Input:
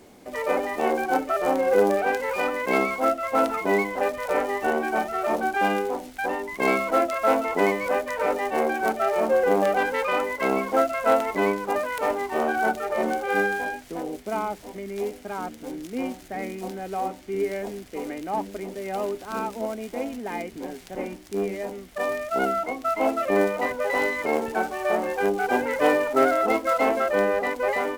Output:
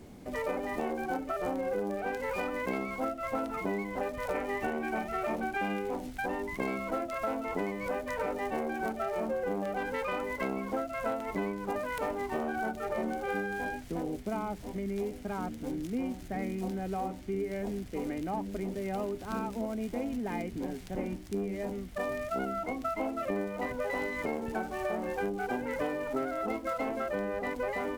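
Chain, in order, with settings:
bass and treble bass +13 dB, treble −1 dB
downward compressor 10 to 1, threshold −25 dBFS, peak gain reduction 13 dB
0:04.35–0:05.96: parametric band 2,300 Hz +6 dB 0.62 octaves
level −4.5 dB

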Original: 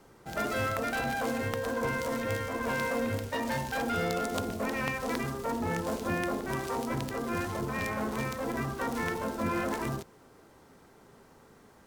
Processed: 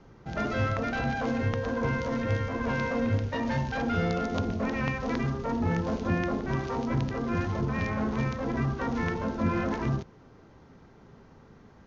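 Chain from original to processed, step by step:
Butterworth low-pass 6,700 Hz 96 dB per octave
bass and treble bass +9 dB, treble −5 dB

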